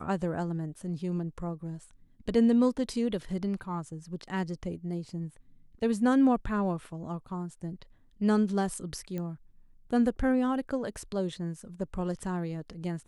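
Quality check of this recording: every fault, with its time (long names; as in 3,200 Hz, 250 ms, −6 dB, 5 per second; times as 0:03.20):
0:09.18: click −24 dBFS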